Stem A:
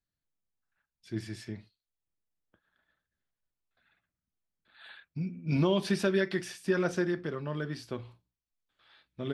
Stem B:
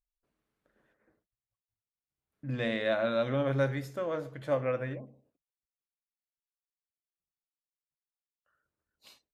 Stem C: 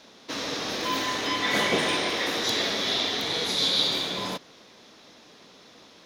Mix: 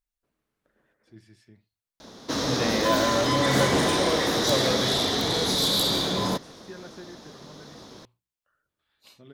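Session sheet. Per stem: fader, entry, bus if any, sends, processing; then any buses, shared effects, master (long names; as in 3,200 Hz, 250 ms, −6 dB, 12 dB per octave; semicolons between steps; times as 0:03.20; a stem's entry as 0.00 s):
−14.5 dB, 0.00 s, no send, no processing
+2.5 dB, 0.00 s, no send, no processing
−7.0 dB, 2.00 s, no send, low-shelf EQ 150 Hz +10.5 dB; sine wavefolder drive 9 dB, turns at −9.5 dBFS; parametric band 2,500 Hz −10 dB 0.85 octaves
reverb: not used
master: no processing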